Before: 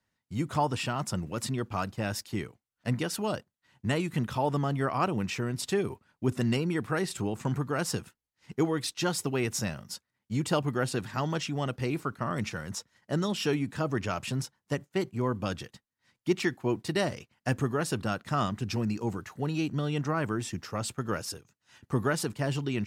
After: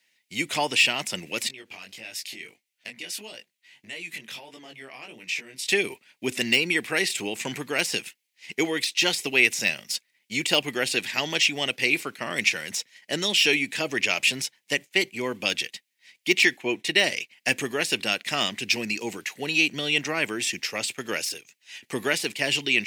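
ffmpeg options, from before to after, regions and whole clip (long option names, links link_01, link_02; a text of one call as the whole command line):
ffmpeg -i in.wav -filter_complex "[0:a]asettb=1/sr,asplit=3[link_01][link_02][link_03];[link_01]atrim=end=1.484[link_04];[link_02]atrim=start=1.48:end=5.69,asetpts=PTS-STARTPTS,afade=type=in:duration=0.004:curve=qsin,afade=type=out:start_time=4.206:duration=0.004:curve=qsin,acompressor=threshold=-39dB:ratio=8:attack=3.2:release=140:knee=1:detection=peak,flanger=delay=17:depth=5.7:speed=1.6[link_05];[link_03]atrim=start=5.686[link_06];[link_04][link_05]acrossfade=duration=0.004:curve1=hsin:curve2=qsin[link_07];[link_07][link_06]acrossfade=duration=0.004:curve1=qsin:curve2=hsin,asettb=1/sr,asplit=3[link_08][link_09][link_10];[link_08]atrim=end=16.574[link_11];[link_09]atrim=start=16.57:end=17.04,asetpts=PTS-STARTPTS,afade=type=in:duration=0.004:curve=qsin,afade=type=out:start_time=0.466:duration=0.004:curve=qsin,highshelf=frequency=7600:gain=-10,bandreject=frequency=4700:width=6.2[link_12];[link_10]atrim=start=17.036[link_13];[link_11][link_12]acrossfade=duration=0.004:curve1=hsin:curve2=qsin[link_14];[link_14][link_13]acrossfade=duration=0.004:curve1=qsin:curve2=hsin,highpass=320,deesser=0.85,highshelf=frequency=1700:width_type=q:width=3:gain=10,volume=4dB" out.wav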